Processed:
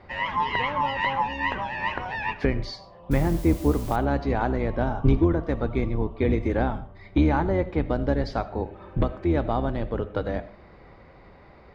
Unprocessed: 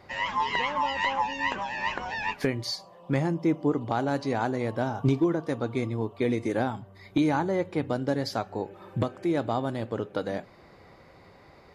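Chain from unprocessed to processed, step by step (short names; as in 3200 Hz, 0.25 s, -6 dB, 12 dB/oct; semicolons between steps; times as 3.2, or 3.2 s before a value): octaver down 2 oct, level +1 dB; LPF 3100 Hz 12 dB/oct; 3.11–3.96 requantised 8-bit, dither triangular; on a send: reverb RT60 0.40 s, pre-delay 40 ms, DRR 15 dB; on the sum: gain +2 dB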